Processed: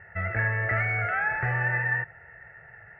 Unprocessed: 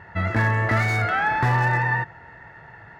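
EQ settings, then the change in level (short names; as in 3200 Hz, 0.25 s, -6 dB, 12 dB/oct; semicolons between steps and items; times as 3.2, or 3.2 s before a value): ladder low-pass 3000 Hz, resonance 35%; fixed phaser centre 1000 Hz, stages 6; +2.5 dB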